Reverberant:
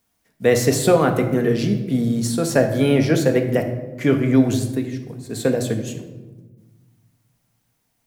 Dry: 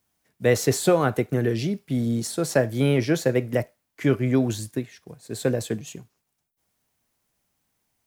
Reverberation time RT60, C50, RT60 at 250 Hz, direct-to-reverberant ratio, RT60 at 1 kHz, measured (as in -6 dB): 1.2 s, 8.5 dB, 1.9 s, 5.0 dB, 1.1 s